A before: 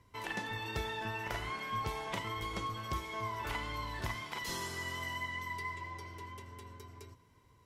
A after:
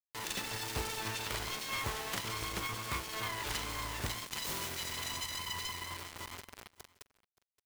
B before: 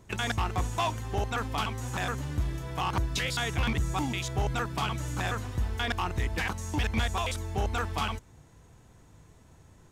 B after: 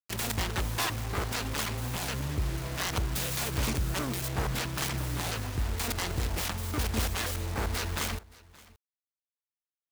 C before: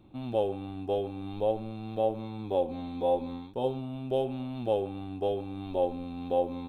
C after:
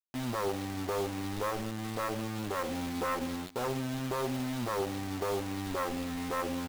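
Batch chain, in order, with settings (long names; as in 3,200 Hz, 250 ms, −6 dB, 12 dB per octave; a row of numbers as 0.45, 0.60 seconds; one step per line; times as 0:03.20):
phase distortion by the signal itself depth 0.66 ms
brickwall limiter −24.5 dBFS
bit reduction 7 bits
on a send: single-tap delay 573 ms −22.5 dB
on the sum: level +1.5 dB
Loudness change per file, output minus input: +1.5, −0.5, −2.5 LU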